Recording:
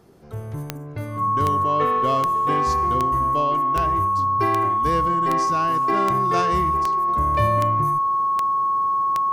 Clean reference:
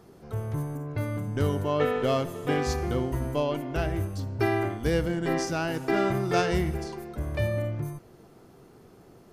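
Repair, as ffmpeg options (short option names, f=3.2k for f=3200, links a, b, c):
-af "adeclick=t=4,bandreject=f=1.1k:w=30,asetnsamples=n=441:p=0,asendcmd='7.08 volume volume -5dB',volume=0dB"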